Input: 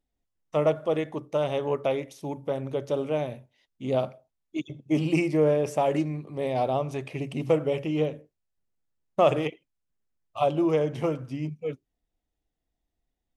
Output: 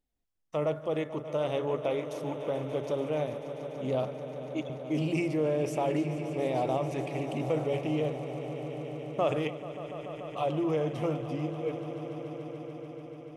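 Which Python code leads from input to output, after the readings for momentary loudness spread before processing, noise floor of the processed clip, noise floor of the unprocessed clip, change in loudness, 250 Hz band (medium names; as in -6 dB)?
13 LU, -45 dBFS, -83 dBFS, -5.0 dB, -3.5 dB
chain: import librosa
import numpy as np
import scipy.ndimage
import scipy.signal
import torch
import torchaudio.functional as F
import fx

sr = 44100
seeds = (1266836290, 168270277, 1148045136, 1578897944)

p1 = fx.over_compress(x, sr, threshold_db=-26.0, ratio=-1.0)
p2 = x + F.gain(torch.from_numpy(p1), -2.0).numpy()
p3 = fx.echo_swell(p2, sr, ms=145, loudest=5, wet_db=-15)
y = F.gain(torch.from_numpy(p3), -9.0).numpy()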